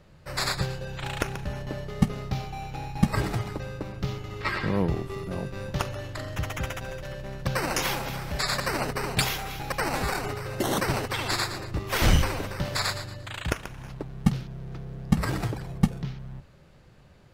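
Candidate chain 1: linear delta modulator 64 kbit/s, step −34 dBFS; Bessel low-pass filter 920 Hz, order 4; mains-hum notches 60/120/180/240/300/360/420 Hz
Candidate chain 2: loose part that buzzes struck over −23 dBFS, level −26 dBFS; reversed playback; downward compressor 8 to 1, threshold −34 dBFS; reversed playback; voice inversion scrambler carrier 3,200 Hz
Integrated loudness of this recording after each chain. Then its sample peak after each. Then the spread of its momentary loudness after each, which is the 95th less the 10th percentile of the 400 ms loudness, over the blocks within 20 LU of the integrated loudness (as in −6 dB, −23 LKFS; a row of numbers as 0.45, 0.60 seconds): −32.5, −35.0 LKFS; −9.5, −19.5 dBFS; 11, 4 LU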